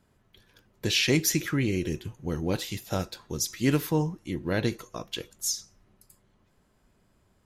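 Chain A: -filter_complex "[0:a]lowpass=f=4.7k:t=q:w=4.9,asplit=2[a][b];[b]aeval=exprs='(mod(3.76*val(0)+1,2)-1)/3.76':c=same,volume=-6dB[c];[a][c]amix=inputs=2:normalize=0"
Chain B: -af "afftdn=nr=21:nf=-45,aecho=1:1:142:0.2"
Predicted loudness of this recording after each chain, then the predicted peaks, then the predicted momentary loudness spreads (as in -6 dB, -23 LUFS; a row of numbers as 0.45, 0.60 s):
-22.0, -28.5 LUFS; -5.0, -10.5 dBFS; 14, 13 LU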